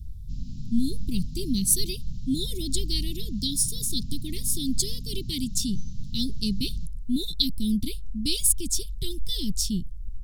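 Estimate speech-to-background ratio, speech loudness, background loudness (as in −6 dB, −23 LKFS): 13.0 dB, −27.5 LKFS, −40.5 LKFS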